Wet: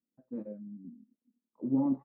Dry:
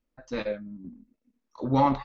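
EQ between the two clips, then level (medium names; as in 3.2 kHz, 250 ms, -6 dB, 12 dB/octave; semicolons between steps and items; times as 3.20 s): ladder band-pass 260 Hz, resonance 40%; tilt EQ -1.5 dB/octave; dynamic bell 310 Hz, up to +6 dB, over -45 dBFS, Q 2.7; 0.0 dB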